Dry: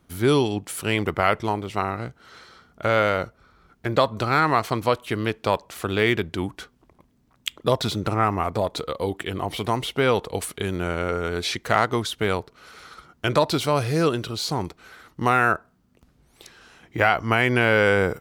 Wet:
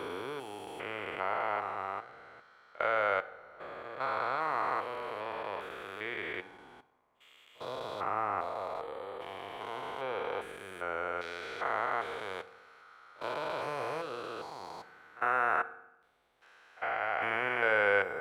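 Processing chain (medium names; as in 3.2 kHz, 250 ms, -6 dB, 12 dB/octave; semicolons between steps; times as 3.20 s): spectrogram pixelated in time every 400 ms; three-band isolator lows -22 dB, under 500 Hz, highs -14 dB, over 2.5 kHz; pre-echo 54 ms -21 dB; on a send at -13 dB: reverberation RT60 0.90 s, pre-delay 3 ms; on the sum: trim -4 dB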